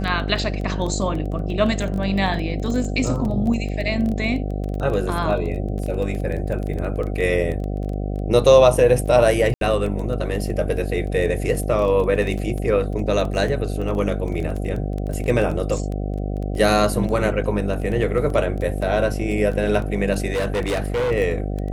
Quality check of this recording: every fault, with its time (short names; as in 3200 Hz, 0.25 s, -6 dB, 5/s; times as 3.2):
buzz 50 Hz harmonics 15 -25 dBFS
crackle 12/s -25 dBFS
9.54–9.61 gap 72 ms
20.32–21.12 clipped -18.5 dBFS